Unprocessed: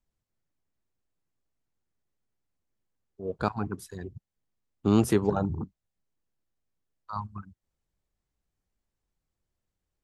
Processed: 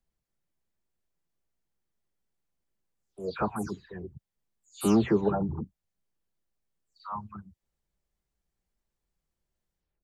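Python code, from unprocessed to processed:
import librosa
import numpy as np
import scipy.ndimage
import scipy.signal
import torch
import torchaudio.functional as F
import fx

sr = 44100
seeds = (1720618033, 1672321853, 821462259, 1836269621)

y = fx.spec_delay(x, sr, highs='early', ms=234)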